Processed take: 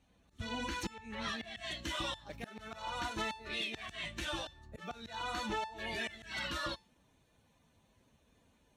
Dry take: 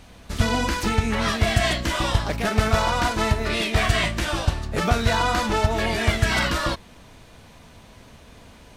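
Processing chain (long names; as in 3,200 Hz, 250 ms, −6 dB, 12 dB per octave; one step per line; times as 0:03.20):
spectral dynamics exaggerated over time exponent 1.5
high-shelf EQ 8,200 Hz −11 dB, from 0:01.59 −3.5 dB
notch filter 4,900 Hz, Q 6.3
dynamic equaliser 3,500 Hz, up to +7 dB, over −44 dBFS, Q 0.76
volume swells 645 ms
high-pass filter 48 Hz
tuned comb filter 890 Hz, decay 0.31 s, mix 70%
downward compressor 5 to 1, threshold −40 dBFS, peak gain reduction 10 dB
level +5.5 dB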